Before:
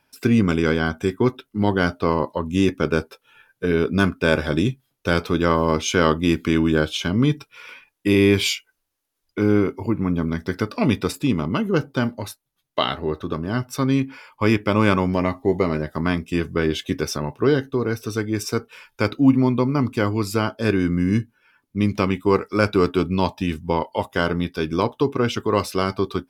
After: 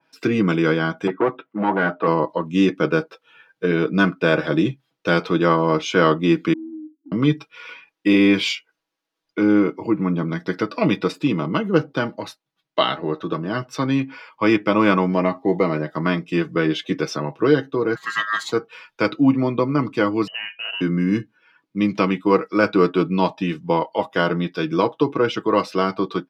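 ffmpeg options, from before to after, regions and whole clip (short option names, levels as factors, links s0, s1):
-filter_complex "[0:a]asettb=1/sr,asplit=3[s0][s1][s2];[s0]atrim=end=1.074[s3];[s1]atrim=start=1.07:end=2.07,asetpts=PTS-STARTPTS,afade=t=in:d=0.004:c=qsin,afade=t=out:st=0.996:d=0.004:c=qsin,asoftclip=type=hard:threshold=0.112,highpass=140,lowpass=2100,equalizer=f=970:w=0.52:g=5.5[s4];[s2]atrim=start=2.066[s5];[s3][s4]acrossfade=d=0.004:c1=hsin:c2=qsin[s6];[s6][s5]acrossfade=d=0.004:c1=qsin:c2=hsin,asettb=1/sr,asplit=3[s7][s8][s9];[s7]atrim=end=6.534[s10];[s8]atrim=start=6.53:end=7.12,asetpts=PTS-STARTPTS,afade=t=in:d=0.004:c=qsin,afade=t=out:st=0.586:d=0.004:c=qsin,asuperpass=centerf=280:order=12:qfactor=3.3,acompressor=threshold=0.00447:ratio=2:attack=3.2:release=140:knee=1:detection=peak[s11];[s9]atrim=start=7.116[s12];[s10][s11]acrossfade=d=0.004:c1=hsin:c2=qsin[s13];[s13][s12]acrossfade=d=0.004:c1=qsin:c2=hsin,asettb=1/sr,asplit=3[s14][s15][s16];[s14]atrim=end=17.954[s17];[s15]atrim=start=17.95:end=18.52,asetpts=PTS-STARTPTS,afade=t=in:d=0.004:c=qsin,afade=t=out:st=0.566:d=0.004:c=qsin,acompressor=mode=upward:threshold=0.0355:ratio=2.5:attack=3.2:release=140:knee=2.83:detection=peak,aeval=exprs='val(0)*sin(2*PI*1500*n/s)':c=same,adynamicequalizer=threshold=0.0126:dfrequency=2200:dqfactor=0.7:tfrequency=2200:tqfactor=0.7:attack=5:release=100:ratio=0.375:range=3:mode=boostabove:tftype=highshelf[s18];[s16]atrim=start=18.516[s19];[s17][s18]acrossfade=d=0.004:c1=hsin:c2=qsin[s20];[s20][s19]acrossfade=d=0.004:c1=qsin:c2=hsin,asettb=1/sr,asplit=3[s21][s22][s23];[s21]atrim=end=20.274[s24];[s22]atrim=start=20.27:end=20.81,asetpts=PTS-STARTPTS,afade=t=in:d=0.004:c=qsin,afade=t=out:st=0.536:d=0.004:c=qsin,acompressor=threshold=0.0355:ratio=3:attack=3.2:release=140:knee=1:detection=peak,lowpass=f=2600:t=q:w=0.5098,lowpass=f=2600:t=q:w=0.6013,lowpass=f=2600:t=q:w=0.9,lowpass=f=2600:t=q:w=2.563,afreqshift=-3100[s25];[s23]atrim=start=20.806[s26];[s24][s25]acrossfade=d=0.004:c1=hsin:c2=qsin[s27];[s27][s26]acrossfade=d=0.004:c1=qsin:c2=hsin,acrossover=split=150 5600:gain=0.0794 1 0.112[s28][s29][s30];[s28][s29][s30]amix=inputs=3:normalize=0,aecho=1:1:6.2:0.59,adynamicequalizer=threshold=0.02:dfrequency=2100:dqfactor=0.7:tfrequency=2100:tqfactor=0.7:attack=5:release=100:ratio=0.375:range=2:mode=cutabove:tftype=highshelf,volume=1.19"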